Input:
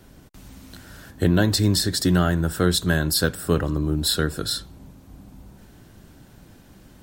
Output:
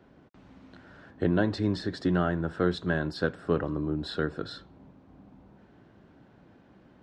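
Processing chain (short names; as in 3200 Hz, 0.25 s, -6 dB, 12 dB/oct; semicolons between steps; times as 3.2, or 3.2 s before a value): HPF 340 Hz 6 dB/oct; tape spacing loss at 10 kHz 39 dB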